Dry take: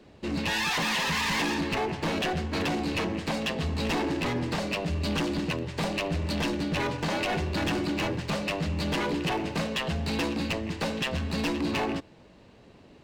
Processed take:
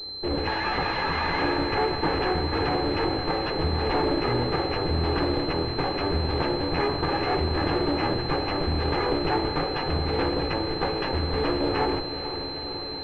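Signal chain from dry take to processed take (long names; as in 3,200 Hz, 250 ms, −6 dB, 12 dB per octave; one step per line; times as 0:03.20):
lower of the sound and its delayed copy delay 2.4 ms
on a send: feedback delay with all-pass diffusion 463 ms, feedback 76%, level −10.5 dB
on the sum: switching amplifier with a slow clock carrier 4,100 Hz
level +6 dB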